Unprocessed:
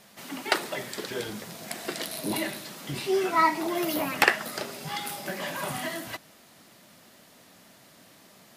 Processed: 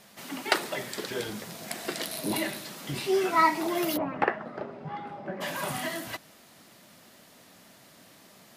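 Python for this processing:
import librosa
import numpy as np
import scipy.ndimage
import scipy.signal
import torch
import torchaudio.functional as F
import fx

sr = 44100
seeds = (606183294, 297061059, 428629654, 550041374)

y = fx.lowpass(x, sr, hz=1100.0, slope=12, at=(3.96, 5.4), fade=0.02)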